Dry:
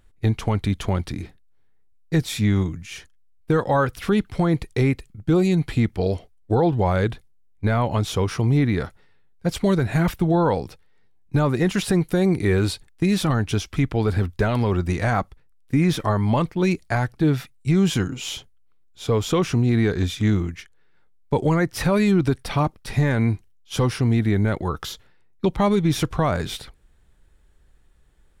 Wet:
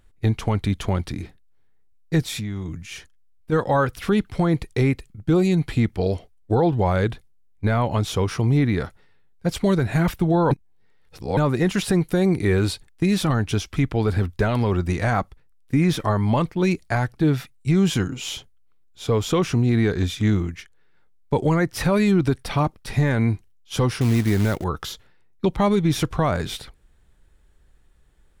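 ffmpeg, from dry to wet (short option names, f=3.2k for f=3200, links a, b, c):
-filter_complex "[0:a]asplit=3[a][b][c];[a]afade=t=out:st=2.23:d=0.02[d];[b]acompressor=threshold=-25dB:ratio=10:attack=3.2:release=140:knee=1:detection=peak,afade=t=in:st=2.23:d=0.02,afade=t=out:st=3.51:d=0.02[e];[c]afade=t=in:st=3.51:d=0.02[f];[d][e][f]amix=inputs=3:normalize=0,asettb=1/sr,asplit=3[g][h][i];[g]atrim=end=24.014[j];[h]atrim=start=24.01:end=24.64,asetpts=PTS-STARTPTS,afade=t=in:d=0.004:c=qsin,afade=t=out:st=0.626:d=0.004:c=qsin,acrusher=bits=4:mode=log:mix=0:aa=0.000001[k];[i]atrim=start=24.636[l];[j][k]acrossfade=d=0.004:c1=hsin:c2=qsin[m];[m][l]acrossfade=d=0.004:c1=qsin:c2=hsin,asplit=3[n][o][p];[n]atrim=end=10.512[q];[o]atrim=start=10.508:end=11.372,asetpts=PTS-STARTPTS,areverse[r];[p]atrim=start=11.368[s];[q][r]acrossfade=d=0.004:c1=hsin:c2=hsin[t];[t][s]acrossfade=d=0.004:c1=hsin:c2=hsin"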